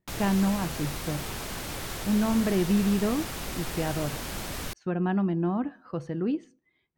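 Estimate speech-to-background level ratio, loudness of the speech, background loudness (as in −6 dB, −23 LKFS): 6.0 dB, −29.0 LKFS, −35.0 LKFS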